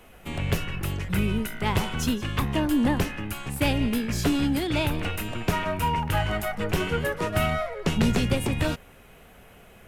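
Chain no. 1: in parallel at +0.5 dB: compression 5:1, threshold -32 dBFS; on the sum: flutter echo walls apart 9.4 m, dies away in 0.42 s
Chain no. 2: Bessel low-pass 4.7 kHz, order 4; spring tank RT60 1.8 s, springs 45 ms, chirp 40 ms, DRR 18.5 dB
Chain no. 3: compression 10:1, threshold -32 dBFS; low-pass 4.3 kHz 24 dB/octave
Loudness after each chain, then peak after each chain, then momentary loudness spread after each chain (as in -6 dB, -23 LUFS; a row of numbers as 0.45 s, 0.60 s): -23.5 LUFS, -27.0 LUFS, -37.0 LUFS; -7.0 dBFS, -9.5 dBFS, -20.0 dBFS; 5 LU, 7 LU, 4 LU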